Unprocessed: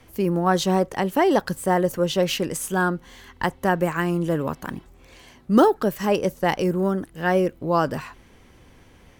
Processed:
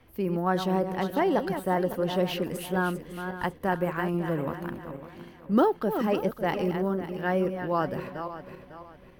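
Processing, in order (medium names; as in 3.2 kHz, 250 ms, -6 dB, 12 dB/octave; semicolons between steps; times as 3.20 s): backward echo that repeats 276 ms, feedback 56%, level -8.5 dB; peaking EQ 7.1 kHz -13.5 dB 1 oct; trim -6 dB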